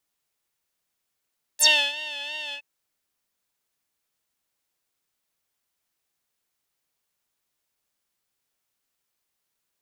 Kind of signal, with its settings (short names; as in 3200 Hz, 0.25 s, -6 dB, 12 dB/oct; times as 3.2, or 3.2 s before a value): synth patch with vibrato D5, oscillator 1 triangle, oscillator 2 saw, interval +7 st, oscillator 2 level -1 dB, sub -12 dB, noise -20.5 dB, filter bandpass, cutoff 2600 Hz, Q 11, filter envelope 2.5 oct, filter decay 0.08 s, filter sustain 10%, attack 26 ms, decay 0.31 s, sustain -18 dB, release 0.07 s, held 0.95 s, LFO 2.9 Hz, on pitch 64 cents